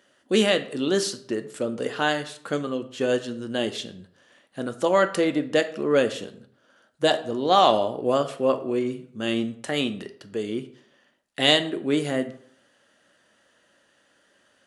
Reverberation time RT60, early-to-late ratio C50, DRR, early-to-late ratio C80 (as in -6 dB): 0.60 s, 13.5 dB, 8.5 dB, 17.0 dB